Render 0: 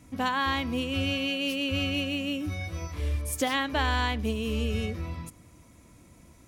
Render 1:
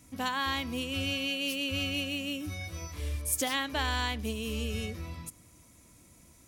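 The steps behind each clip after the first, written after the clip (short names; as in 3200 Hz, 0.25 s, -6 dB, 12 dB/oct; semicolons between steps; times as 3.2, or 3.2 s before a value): high shelf 3900 Hz +11 dB; gain -5.5 dB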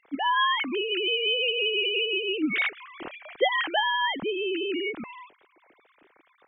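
sine-wave speech; gain +6 dB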